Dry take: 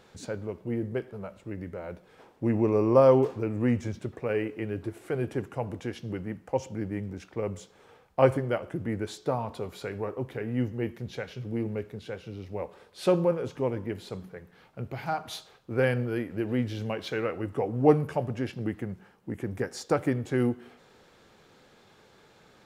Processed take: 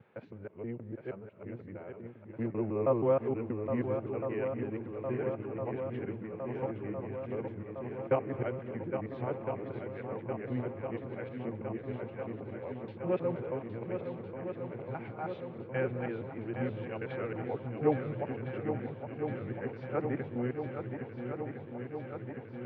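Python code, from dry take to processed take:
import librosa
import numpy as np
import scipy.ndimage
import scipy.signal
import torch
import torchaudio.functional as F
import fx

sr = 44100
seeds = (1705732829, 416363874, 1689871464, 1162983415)

y = fx.local_reverse(x, sr, ms=159.0)
y = scipy.signal.sosfilt(scipy.signal.ellip(3, 1.0, 50, [100.0, 2500.0], 'bandpass', fs=sr, output='sos'), y)
y = fx.echo_swing(y, sr, ms=1359, ratio=1.5, feedback_pct=74, wet_db=-7.5)
y = y * 10.0 ** (-8.0 / 20.0)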